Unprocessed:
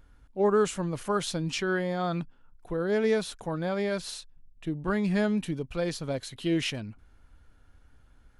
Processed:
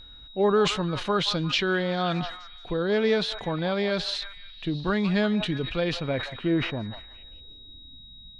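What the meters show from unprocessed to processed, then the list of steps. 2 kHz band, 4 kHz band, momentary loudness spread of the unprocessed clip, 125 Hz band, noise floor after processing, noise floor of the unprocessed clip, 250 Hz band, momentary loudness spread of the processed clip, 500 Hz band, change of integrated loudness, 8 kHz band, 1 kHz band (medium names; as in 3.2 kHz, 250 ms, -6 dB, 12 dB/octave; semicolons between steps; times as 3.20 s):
+5.0 dB, +9.0 dB, 12 LU, +3.0 dB, -47 dBFS, -59 dBFS, +2.5 dB, 22 LU, +2.5 dB, +3.0 dB, -3.5 dB, +3.5 dB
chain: in parallel at -2.5 dB: compression, threshold -33 dBFS, peak gain reduction 13.5 dB; on the sum: low-pass sweep 3.8 kHz -> 190 Hz, 5.69–8.15 s; whistle 3.8 kHz -46 dBFS; repeats whose band climbs or falls 175 ms, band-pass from 920 Hz, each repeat 0.7 oct, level -10 dB; decay stretcher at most 88 dB/s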